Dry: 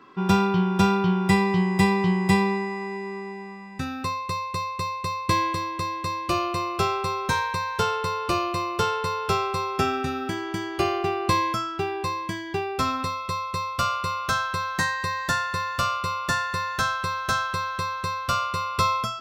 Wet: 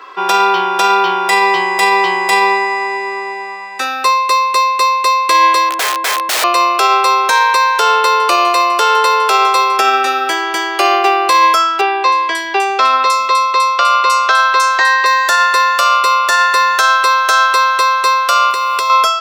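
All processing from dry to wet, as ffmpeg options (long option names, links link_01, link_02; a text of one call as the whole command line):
ffmpeg -i in.wav -filter_complex "[0:a]asettb=1/sr,asplit=3[link_01][link_02][link_03];[link_01]atrim=end=5.694[link_04];[link_02]atrim=start=5.69:end=6.44,asetpts=PTS-STARTPTS,afade=type=in:duration=0.004:curve=qsin,afade=type=out:start_time=0.746:duration=0.004:curve=qsin,lowpass=frequency=1000:poles=1,aeval=exprs='(mod(23.7*val(0)+1,2)-1)/23.7':channel_layout=same,equalizer=frequency=180:width_type=o:width=1.5:gain=8.5[link_05];[link_03]atrim=start=6.436[link_06];[link_04][link_05]acrossfade=duration=0.004:curve1=hsin:curve2=qsin[link_07];[link_07][link_06]acrossfade=duration=0.004:curve1=qsin:curve2=hsin,asettb=1/sr,asplit=3[link_08][link_09][link_10];[link_08]atrim=end=7.884[link_11];[link_09]atrim=start=7.88:end=9.77,asetpts=PTS-STARTPTS,afade=type=in:duration=0.004:curve=qsin,afade=type=out:start_time=1.886:duration=0.004:curve=qsin,bandreject=frequency=5400:width=29,aecho=1:1:159|318|477:0.141|0.0537|0.0204,atrim=end_sample=83349[link_12];[link_10]atrim=start=9.766[link_13];[link_11][link_12]acrossfade=duration=0.004:curve1=hsin:curve2=qsin[link_14];[link_14][link_13]acrossfade=duration=0.004:curve1=qsin:curve2=hsin,asettb=1/sr,asplit=3[link_15][link_16][link_17];[link_15]atrim=end=11.814[link_18];[link_16]atrim=start=11.81:end=15.06,asetpts=PTS-STARTPTS,afade=type=in:duration=0.004:curve=qsin,afade=type=out:start_time=3.246:duration=0.004:curve=qsin,lowpass=10000,acrossover=split=180|5300[link_19][link_20][link_21];[link_21]adelay=310[link_22];[link_19]adelay=400[link_23];[link_23][link_20][link_22]amix=inputs=3:normalize=0,atrim=end_sample=143325[link_24];[link_17]atrim=start=15.056[link_25];[link_18][link_24]acrossfade=duration=0.004:curve1=hsin:curve2=qsin[link_26];[link_26][link_25]acrossfade=duration=0.004:curve1=qsin:curve2=hsin,asettb=1/sr,asplit=3[link_27][link_28][link_29];[link_27]atrim=end=18.504[link_30];[link_28]atrim=start=18.5:end=18.9,asetpts=PTS-STARTPTS,afade=type=in:duration=0.004:curve=qsin,afade=type=out:start_time=0.396:duration=0.004:curve=qsin,bandreject=frequency=1300:width=15,acompressor=threshold=-28dB:ratio=12:attack=3.2:release=140:knee=1:detection=peak,acrusher=bits=8:mode=log:mix=0:aa=0.000001[link_31];[link_29]atrim=start=18.896[link_32];[link_30][link_31]acrossfade=duration=0.004:curve1=hsin:curve2=qsin[link_33];[link_33][link_32]acrossfade=duration=0.004:curve1=qsin:curve2=hsin,highpass=frequency=490:width=0.5412,highpass=frequency=490:width=1.3066,alimiter=level_in=18.5dB:limit=-1dB:release=50:level=0:latency=1,volume=-1dB" out.wav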